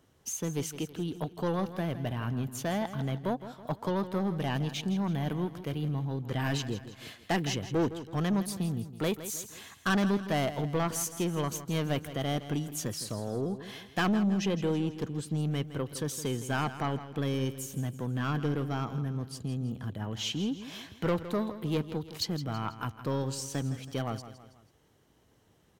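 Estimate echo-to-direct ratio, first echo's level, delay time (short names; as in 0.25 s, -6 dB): -12.0 dB, -13.0 dB, 0.163 s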